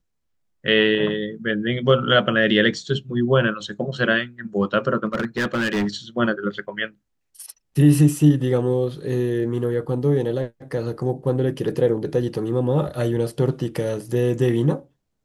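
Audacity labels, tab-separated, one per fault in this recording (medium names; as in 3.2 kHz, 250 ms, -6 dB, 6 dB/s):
5.050000	5.960000	clipped -18.5 dBFS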